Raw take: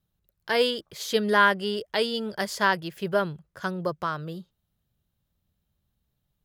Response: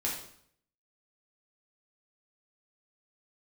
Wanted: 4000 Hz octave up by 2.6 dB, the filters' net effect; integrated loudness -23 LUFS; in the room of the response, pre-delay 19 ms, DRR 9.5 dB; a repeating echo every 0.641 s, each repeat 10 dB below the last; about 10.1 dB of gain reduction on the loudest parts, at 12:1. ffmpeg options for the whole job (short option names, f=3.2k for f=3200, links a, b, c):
-filter_complex "[0:a]equalizer=f=4k:t=o:g=3.5,acompressor=threshold=-25dB:ratio=12,aecho=1:1:641|1282|1923|2564:0.316|0.101|0.0324|0.0104,asplit=2[a][b];[1:a]atrim=start_sample=2205,adelay=19[c];[b][c]afir=irnorm=-1:irlink=0,volume=-14dB[d];[a][d]amix=inputs=2:normalize=0,volume=7.5dB"